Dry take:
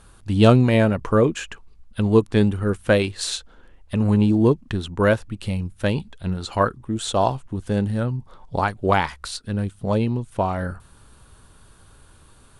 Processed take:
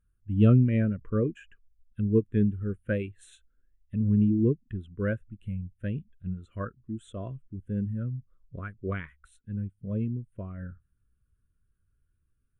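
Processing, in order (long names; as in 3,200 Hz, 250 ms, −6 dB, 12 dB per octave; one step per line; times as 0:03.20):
phaser with its sweep stopped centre 2,000 Hz, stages 4
every bin expanded away from the loudest bin 1.5 to 1
level −4.5 dB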